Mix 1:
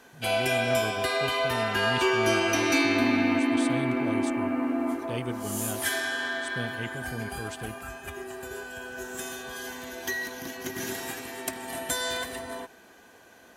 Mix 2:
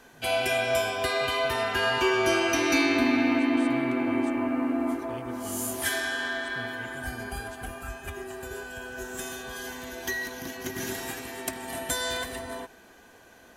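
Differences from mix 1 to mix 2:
speech -10.5 dB; master: remove HPF 110 Hz 6 dB/oct

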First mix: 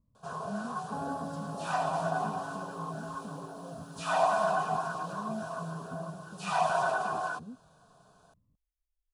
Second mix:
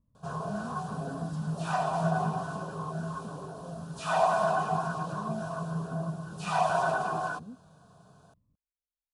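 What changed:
first sound: remove HPF 440 Hz 6 dB/oct; second sound: add band-pass 180 Hz, Q 2.1

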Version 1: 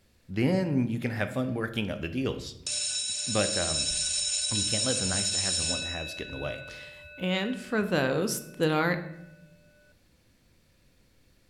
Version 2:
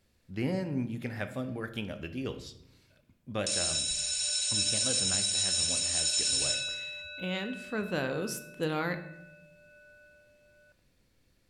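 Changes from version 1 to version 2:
speech -6.0 dB; background: entry +0.80 s

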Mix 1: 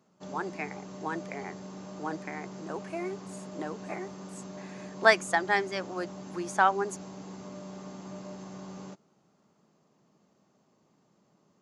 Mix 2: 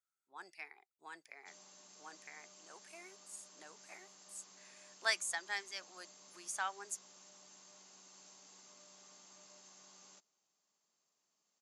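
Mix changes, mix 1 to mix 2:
background: entry +1.25 s; master: add differentiator

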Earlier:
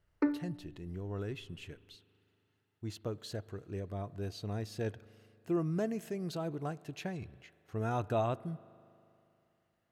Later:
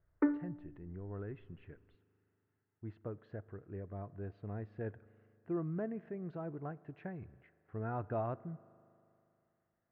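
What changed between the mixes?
speech -4.5 dB; master: add Chebyshev low-pass 1800 Hz, order 3

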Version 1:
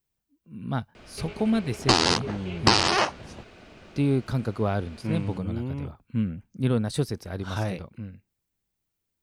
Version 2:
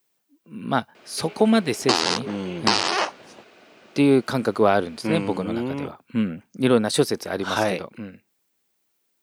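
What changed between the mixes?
speech +11.0 dB; master: add HPF 300 Hz 12 dB/oct

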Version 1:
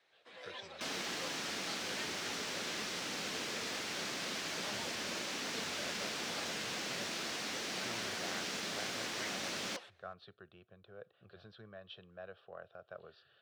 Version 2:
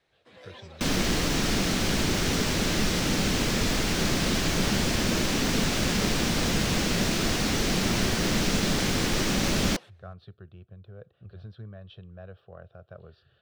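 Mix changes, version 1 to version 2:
second sound +11.5 dB; master: remove weighting filter A

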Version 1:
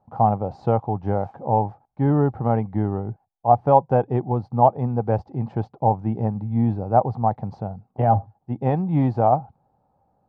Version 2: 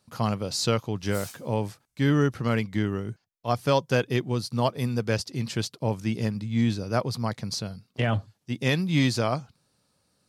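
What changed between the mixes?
speech: add low shelf 100 Hz -10 dB; master: remove synth low-pass 800 Hz, resonance Q 10

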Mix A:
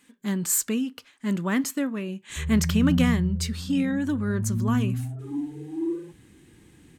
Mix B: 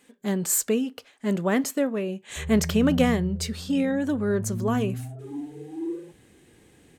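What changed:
background -4.5 dB; master: add band shelf 560 Hz +9 dB 1.2 oct

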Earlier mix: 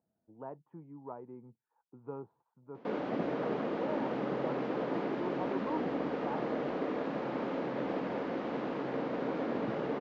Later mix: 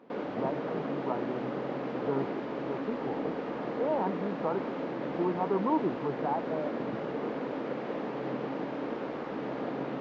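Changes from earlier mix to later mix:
speech +10.0 dB; background: entry -2.75 s

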